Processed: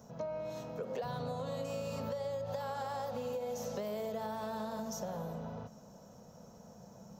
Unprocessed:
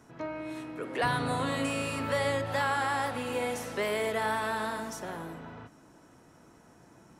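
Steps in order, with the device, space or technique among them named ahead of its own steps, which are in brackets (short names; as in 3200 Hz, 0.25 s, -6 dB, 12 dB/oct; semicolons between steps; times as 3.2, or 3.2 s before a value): EQ curve 130 Hz 0 dB, 210 Hz +8 dB, 310 Hz -16 dB, 510 Hz +7 dB, 2000 Hz -14 dB, 6500 Hz +5 dB, 9500 Hz -20 dB, 14000 Hz +8 dB; serial compression, peaks first (compressor, threshold -32 dBFS, peak gain reduction 10.5 dB; compressor 2.5:1, threshold -39 dBFS, peak gain reduction 6.5 dB); gain +1.5 dB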